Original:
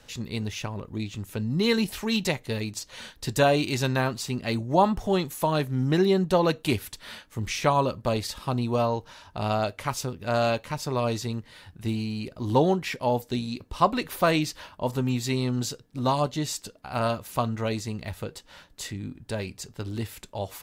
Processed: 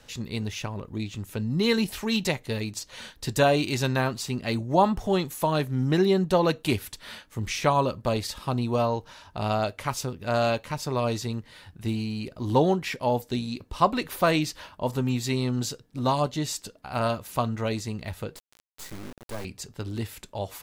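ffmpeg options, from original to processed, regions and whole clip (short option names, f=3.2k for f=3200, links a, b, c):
-filter_complex "[0:a]asettb=1/sr,asplit=3[a][b][c];[a]atrim=end=18.364[d];[b]atrim=start=18.36:end=19.45,asetpts=PTS-STARTPTS,afade=t=in:d=0.004:c=qsin,afade=t=out:st=1.086:d=0.004:c=qsin,equalizer=f=3.1k:t=o:w=0.61:g=-10.5,acrusher=bits=4:dc=4:mix=0:aa=0.000001[e];[c]atrim=start=19.446[f];[d][e]acrossfade=d=0.004:c1=hsin:c2=qsin[g];[g][f]acrossfade=d=0.004:c1=qsin:c2=hsin"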